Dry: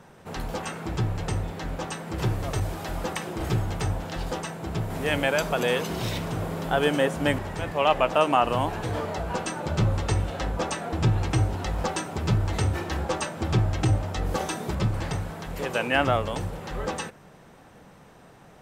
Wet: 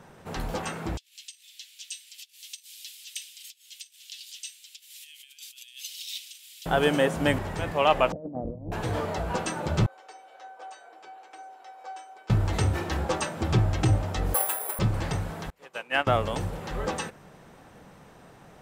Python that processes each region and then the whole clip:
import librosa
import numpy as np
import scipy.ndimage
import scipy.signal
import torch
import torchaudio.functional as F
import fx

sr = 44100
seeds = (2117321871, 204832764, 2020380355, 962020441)

y = fx.chain(x, sr, fx.over_compress(threshold_db=-29.0, ratio=-0.5),
    fx.steep_highpass(hz=2900.0, slope=36), at=(0.97, 6.66))
y = fx.chain(y, sr, fx.steep_lowpass(hz=530.0, slope=36),
    fx.peak_eq(hz=400.0, db=-10.5, octaves=0.33),
    fx.over_compress(threshold_db=-34.0, ratio=-0.5), at=(8.12, 8.72))
y = fx.chain(y, sr, fx.highpass(hz=440.0, slope=24),
    fx.high_shelf(hz=3900.0, db=-7.5),
    fx.comb_fb(f0_hz=760.0, decay_s=0.24, harmonics='all', damping=0.0, mix_pct=90), at=(9.86, 12.3))
y = fx.chain(y, sr, fx.highpass(hz=520.0, slope=24),
    fx.air_absorb(metres=200.0),
    fx.resample_bad(factor=4, down='filtered', up='zero_stuff'), at=(14.34, 14.79))
y = fx.chain(y, sr, fx.lowpass(hz=1500.0, slope=6),
    fx.tilt_eq(slope=4.0),
    fx.upward_expand(threshold_db=-41.0, expansion=2.5), at=(15.5, 16.07))